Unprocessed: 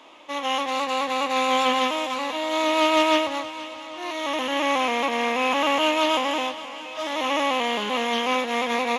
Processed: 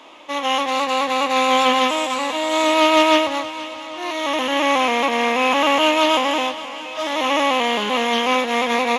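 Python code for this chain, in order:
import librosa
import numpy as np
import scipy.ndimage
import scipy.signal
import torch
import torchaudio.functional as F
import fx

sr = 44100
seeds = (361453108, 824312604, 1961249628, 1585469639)

y = fx.peak_eq(x, sr, hz=7900.0, db=13.0, octaves=0.22, at=(1.89, 2.74))
y = y * librosa.db_to_amplitude(5.0)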